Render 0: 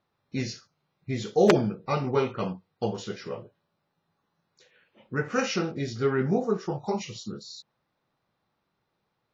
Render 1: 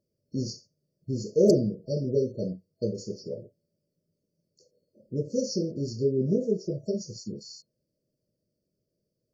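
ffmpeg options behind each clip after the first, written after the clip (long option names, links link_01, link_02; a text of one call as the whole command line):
ffmpeg -i in.wav -af "afftfilt=real='re*(1-between(b*sr/4096,650,4300))':imag='im*(1-between(b*sr/4096,650,4300))':win_size=4096:overlap=0.75" out.wav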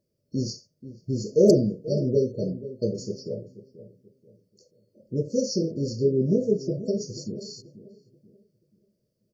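ffmpeg -i in.wav -filter_complex "[0:a]asplit=2[link_01][link_02];[link_02]adelay=484,lowpass=frequency=810:poles=1,volume=-14dB,asplit=2[link_03][link_04];[link_04]adelay=484,lowpass=frequency=810:poles=1,volume=0.37,asplit=2[link_05][link_06];[link_06]adelay=484,lowpass=frequency=810:poles=1,volume=0.37,asplit=2[link_07][link_08];[link_08]adelay=484,lowpass=frequency=810:poles=1,volume=0.37[link_09];[link_01][link_03][link_05][link_07][link_09]amix=inputs=5:normalize=0,volume=3dB" out.wav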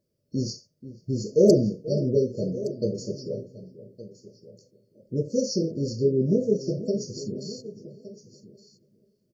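ffmpeg -i in.wav -af "aecho=1:1:1166:0.15" out.wav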